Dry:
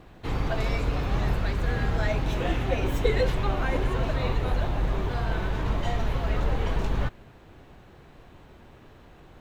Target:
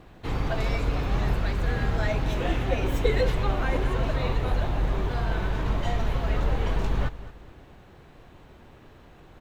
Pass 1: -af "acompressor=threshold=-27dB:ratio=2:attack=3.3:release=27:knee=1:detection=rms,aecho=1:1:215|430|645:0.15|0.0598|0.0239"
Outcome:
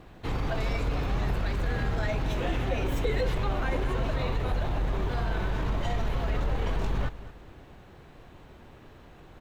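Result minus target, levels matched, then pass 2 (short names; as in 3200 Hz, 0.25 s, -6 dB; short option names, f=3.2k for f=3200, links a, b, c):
compressor: peak gain reduction +7.5 dB
-af "aecho=1:1:215|430|645:0.15|0.0598|0.0239"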